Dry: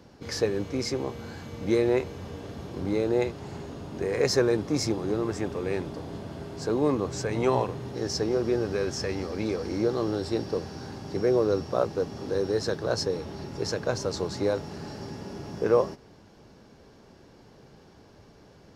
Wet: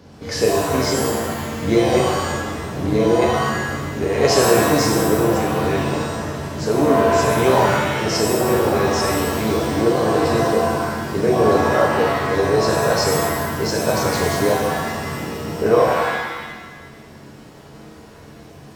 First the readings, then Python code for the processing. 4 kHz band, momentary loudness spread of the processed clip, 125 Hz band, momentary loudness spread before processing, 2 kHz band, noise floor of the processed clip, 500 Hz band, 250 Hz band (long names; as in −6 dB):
+10.5 dB, 10 LU, +10.5 dB, 15 LU, +15.5 dB, −42 dBFS, +9.5 dB, +9.0 dB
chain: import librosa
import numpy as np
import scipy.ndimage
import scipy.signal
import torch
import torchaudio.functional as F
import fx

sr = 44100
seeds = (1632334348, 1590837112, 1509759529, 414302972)

y = fx.rev_shimmer(x, sr, seeds[0], rt60_s=1.1, semitones=7, shimmer_db=-2, drr_db=-1.0)
y = F.gain(torch.from_numpy(y), 5.0).numpy()